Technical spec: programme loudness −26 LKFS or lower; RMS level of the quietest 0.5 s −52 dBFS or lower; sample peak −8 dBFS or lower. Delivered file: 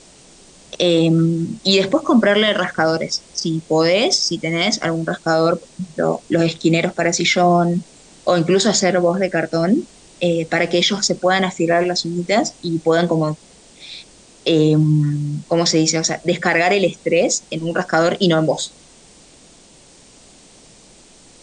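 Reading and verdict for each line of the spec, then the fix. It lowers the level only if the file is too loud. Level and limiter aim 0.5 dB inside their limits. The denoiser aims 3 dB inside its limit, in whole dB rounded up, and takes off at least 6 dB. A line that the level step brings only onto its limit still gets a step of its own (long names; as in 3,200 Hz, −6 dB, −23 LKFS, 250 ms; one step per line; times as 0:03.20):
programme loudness −17.5 LKFS: out of spec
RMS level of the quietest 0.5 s −47 dBFS: out of spec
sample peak −5.0 dBFS: out of spec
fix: level −9 dB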